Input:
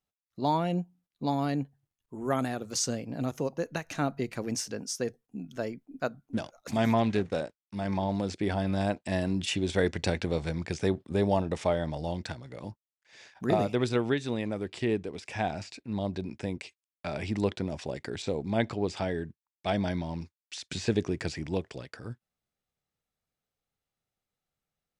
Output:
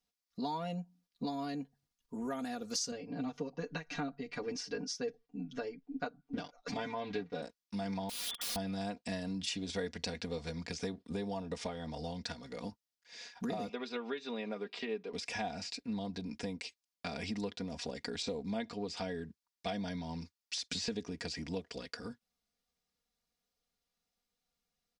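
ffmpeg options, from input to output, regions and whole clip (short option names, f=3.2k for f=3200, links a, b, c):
-filter_complex "[0:a]asettb=1/sr,asplit=3[a][b][c];[a]atrim=end=2.914[d];[b]atrim=start=2.91:end=7.42,asetpts=PTS-STARTPTS,afade=t=in:d=0.004:c=qsin,afade=t=out:st=4.506:d=0.004:c=qsin,lowpass=3.6k,aecho=1:1:6.8:0.84,atrim=end_sample=198891,tremolo=f=2.6:d=0.43[e];[c]atrim=start=7.416[f];[d][e]acrossfade=d=0.004:c1=hsin:c2=qsin[g];[g][f]acrossfade=d=0.004:c1=qsin:c2=hsin,asettb=1/sr,asplit=3[h][i][j];[h]atrim=end=8.094[k];[i]atrim=start=8.09:end=8.56,asetpts=PTS-STARTPTS,afade=t=in:d=0.004:c=qsin,afade=t=out:st=0.466:d=0.004:c=qsin,bandreject=f=270:w=6.3,lowpass=f=3.1k:t=q:w=0.5098,lowpass=f=3.1k:t=q:w=0.6013,lowpass=f=3.1k:t=q:w=0.9,lowpass=f=3.1k:t=q:w=2.563,afreqshift=-3600,aeval=exprs='(mod(44.7*val(0)+1,2)-1)/44.7':c=same[l];[j]atrim=start=8.556[m];[k][l]acrossfade=d=0.004:c1=hsin:c2=qsin[n];[n][m]acrossfade=d=0.004:c1=qsin:c2=hsin,asettb=1/sr,asplit=3[o][p][q];[o]atrim=end=13.694[r];[p]atrim=start=13.69:end=15.13,asetpts=PTS-STARTPTS,afade=t=in:d=0.004:c=qsin,afade=t=out:st=1.436:d=0.004:c=qsin,highpass=350,lowpass=3.4k,aecho=1:1:5:0.43,atrim=end_sample=63504[s];[q]atrim=start=15.126[t];[r][s]acrossfade=d=0.004:c1=hsin:c2=qsin[u];[u][t]acrossfade=d=0.004:c1=qsin:c2=hsin,equalizer=f=4.9k:t=o:w=0.82:g=8.5,acompressor=threshold=-35dB:ratio=5,aecho=1:1:4.2:0.82,volume=-2.5dB"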